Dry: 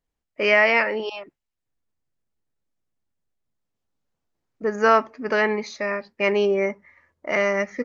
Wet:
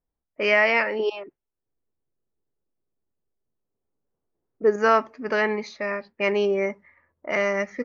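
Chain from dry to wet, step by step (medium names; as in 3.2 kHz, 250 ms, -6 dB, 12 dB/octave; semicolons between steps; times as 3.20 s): level-controlled noise filter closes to 1.2 kHz, open at -20 dBFS; 0.99–4.76 s: peaking EQ 400 Hz +9 dB 0.66 oct; trim -2 dB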